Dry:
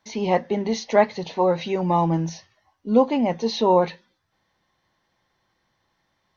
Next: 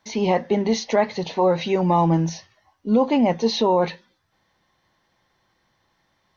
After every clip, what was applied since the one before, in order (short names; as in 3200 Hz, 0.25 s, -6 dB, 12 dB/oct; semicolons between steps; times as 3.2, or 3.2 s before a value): limiter -12.5 dBFS, peak gain reduction 7 dB; gain +3.5 dB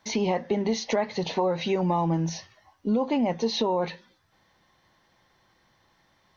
compressor 3:1, threshold -27 dBFS, peak gain reduction 10.5 dB; gain +2.5 dB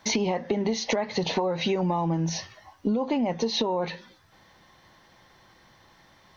compressor 6:1, threshold -31 dBFS, peak gain reduction 10.5 dB; gain +8 dB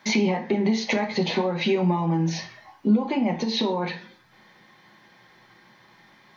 reverb RT60 0.40 s, pre-delay 3 ms, DRR 4 dB; gain -1.5 dB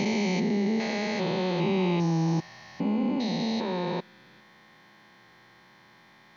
stepped spectrum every 0.4 s